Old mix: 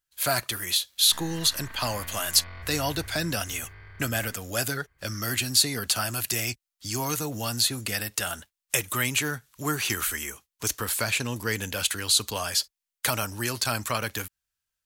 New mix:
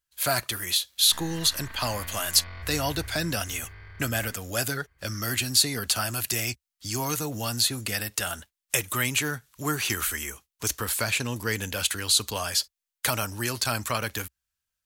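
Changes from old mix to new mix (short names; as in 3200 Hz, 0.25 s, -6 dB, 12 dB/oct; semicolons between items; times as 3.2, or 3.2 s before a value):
background: add high shelf 5800 Hz +8.5 dB; master: add bell 65 Hz +5 dB 0.63 oct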